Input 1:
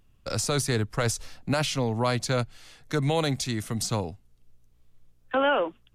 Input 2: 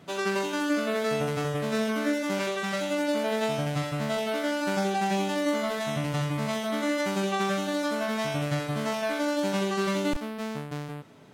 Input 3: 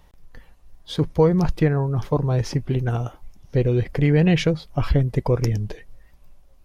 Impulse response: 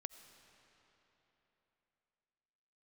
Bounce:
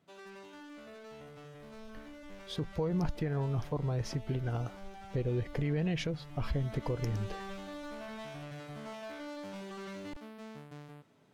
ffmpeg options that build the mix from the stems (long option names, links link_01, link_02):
-filter_complex "[1:a]acrossover=split=5400[link_01][link_02];[link_02]acompressor=threshold=-51dB:ratio=4:attack=1:release=60[link_03];[link_01][link_03]amix=inputs=2:normalize=0,asoftclip=type=hard:threshold=-27dB,volume=-13.5dB,afade=type=in:start_time=6.23:duration=0.6:silence=0.473151[link_04];[2:a]adelay=1600,volume=-9.5dB[link_05];[link_04][link_05]amix=inputs=2:normalize=0,alimiter=limit=-24dB:level=0:latency=1:release=124"